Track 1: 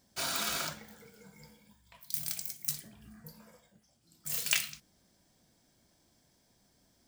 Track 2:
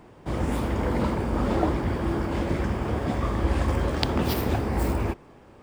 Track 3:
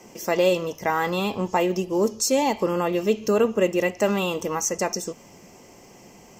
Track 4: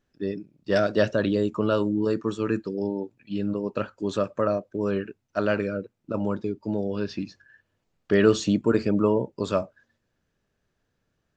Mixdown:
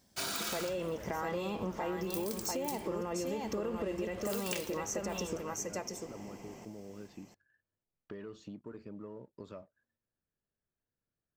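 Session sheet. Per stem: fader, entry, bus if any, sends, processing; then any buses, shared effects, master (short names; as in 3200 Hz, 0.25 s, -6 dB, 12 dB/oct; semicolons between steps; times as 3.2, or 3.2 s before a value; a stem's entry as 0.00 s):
+0.5 dB, 0.00 s, no bus, no send, no echo send, dry
-17.0 dB, 0.30 s, no bus, no send, no echo send, tilt shelf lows -6 dB
-1.0 dB, 0.25 s, bus A, no send, echo send -11.5 dB, dry
-15.5 dB, 0.00 s, bus A, no send, no echo send, sample leveller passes 1; compressor 6:1, threshold -28 dBFS, peak gain reduction 15 dB
bus A: 0.0 dB, high shelf 3200 Hz -9.5 dB; limiter -21.5 dBFS, peak gain reduction 11 dB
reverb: off
echo: echo 0.694 s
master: compressor 6:1, threshold -33 dBFS, peak gain reduction 12.5 dB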